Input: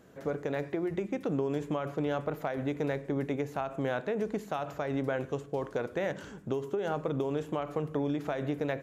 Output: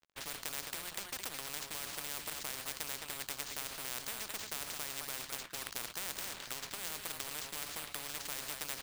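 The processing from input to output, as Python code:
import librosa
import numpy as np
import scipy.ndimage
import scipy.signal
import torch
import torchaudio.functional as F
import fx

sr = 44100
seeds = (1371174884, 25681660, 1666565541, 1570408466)

y = scipy.signal.sosfilt(scipy.signal.butter(2, 1000.0, 'highpass', fs=sr, output='sos'), x)
y = np.repeat(y[::4], 4)[:len(y)]
y = np.sign(y) * np.maximum(np.abs(y) - 10.0 ** (-57.5 / 20.0), 0.0)
y = fx.high_shelf(y, sr, hz=5100.0, db=-8.5)
y = y + 10.0 ** (-12.5 / 20.0) * np.pad(y, (int(214 * sr / 1000.0), 0))[:len(y)]
y = fx.spectral_comp(y, sr, ratio=10.0)
y = y * librosa.db_to_amplitude(8.0)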